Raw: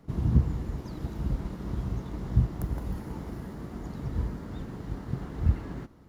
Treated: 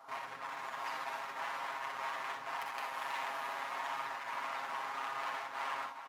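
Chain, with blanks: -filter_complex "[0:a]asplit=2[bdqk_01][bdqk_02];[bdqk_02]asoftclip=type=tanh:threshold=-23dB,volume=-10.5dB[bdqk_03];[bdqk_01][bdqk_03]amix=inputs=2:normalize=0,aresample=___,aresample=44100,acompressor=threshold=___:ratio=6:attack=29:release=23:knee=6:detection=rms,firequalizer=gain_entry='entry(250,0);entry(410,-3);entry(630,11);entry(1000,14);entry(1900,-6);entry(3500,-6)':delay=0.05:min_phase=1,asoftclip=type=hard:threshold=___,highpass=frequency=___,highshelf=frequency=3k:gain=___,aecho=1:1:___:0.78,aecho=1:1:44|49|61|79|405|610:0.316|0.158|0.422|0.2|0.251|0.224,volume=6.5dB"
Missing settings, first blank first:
32000, -31dB, -34dB, 1.5k, -2.5, 7.4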